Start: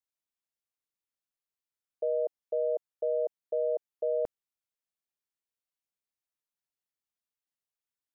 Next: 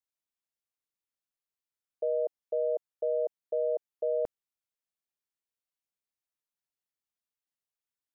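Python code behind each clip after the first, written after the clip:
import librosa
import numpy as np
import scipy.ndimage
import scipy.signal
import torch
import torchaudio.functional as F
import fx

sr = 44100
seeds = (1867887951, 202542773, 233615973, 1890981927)

y = x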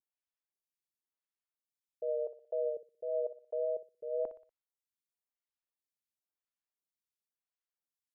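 y = fx.vibrato(x, sr, rate_hz=1.7, depth_cents=40.0)
y = fx.echo_feedback(y, sr, ms=60, feedback_pct=43, wet_db=-11.5)
y = fx.stagger_phaser(y, sr, hz=0.96)
y = y * librosa.db_to_amplitude(-4.0)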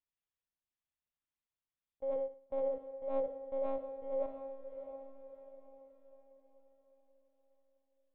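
y = np.where(x < 0.0, 10.0 ** (-3.0 / 20.0) * x, x)
y = fx.lpc_monotone(y, sr, seeds[0], pitch_hz=270.0, order=8)
y = fx.echo_diffused(y, sr, ms=655, feedback_pct=41, wet_db=-9)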